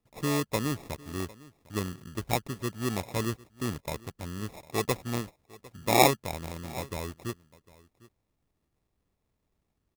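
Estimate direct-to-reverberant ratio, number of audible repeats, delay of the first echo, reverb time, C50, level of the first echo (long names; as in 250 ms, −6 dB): no reverb audible, 1, 753 ms, no reverb audible, no reverb audible, −21.5 dB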